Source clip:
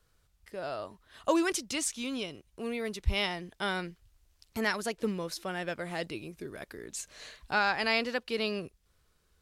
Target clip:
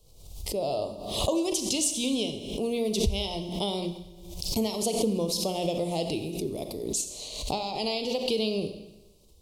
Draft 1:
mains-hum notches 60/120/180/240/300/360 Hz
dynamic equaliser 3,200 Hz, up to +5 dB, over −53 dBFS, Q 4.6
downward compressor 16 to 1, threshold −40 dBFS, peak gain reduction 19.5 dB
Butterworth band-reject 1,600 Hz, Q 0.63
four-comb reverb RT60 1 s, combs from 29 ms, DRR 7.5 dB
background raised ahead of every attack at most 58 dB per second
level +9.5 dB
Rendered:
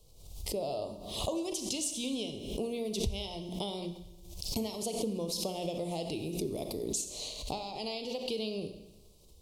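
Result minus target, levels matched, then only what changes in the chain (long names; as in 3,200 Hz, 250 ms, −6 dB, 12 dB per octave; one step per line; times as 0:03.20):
downward compressor: peak gain reduction +8 dB
change: downward compressor 16 to 1, threshold −31.5 dBFS, peak gain reduction 11.5 dB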